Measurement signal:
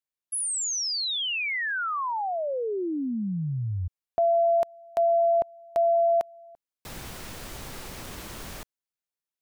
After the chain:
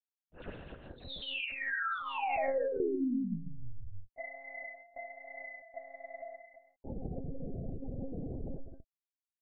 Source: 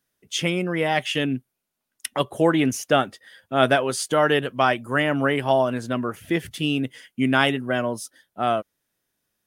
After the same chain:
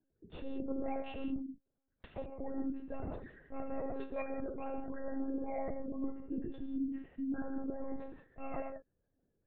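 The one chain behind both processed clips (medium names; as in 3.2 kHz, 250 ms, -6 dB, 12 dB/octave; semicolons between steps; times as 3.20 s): median filter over 41 samples; reverse; compression 12:1, threshold -34 dBFS; reverse; peak limiter -34.5 dBFS; vibrato 0.46 Hz 7 cents; spectral gate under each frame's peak -20 dB strong; gated-style reverb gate 210 ms flat, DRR 1.5 dB; monotone LPC vocoder at 8 kHz 270 Hz; trim +2.5 dB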